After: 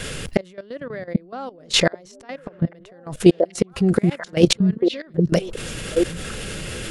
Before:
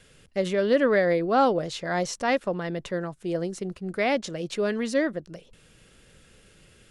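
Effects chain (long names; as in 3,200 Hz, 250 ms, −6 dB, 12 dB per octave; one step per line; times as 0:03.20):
0:03.22–0:04.09: notch comb filter 300 Hz
gate with flip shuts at −23 dBFS, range −38 dB
echo through a band-pass that steps 786 ms, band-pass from 180 Hz, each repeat 1.4 octaves, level −6 dB
output level in coarse steps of 15 dB
boost into a limiter +30.5 dB
level −1 dB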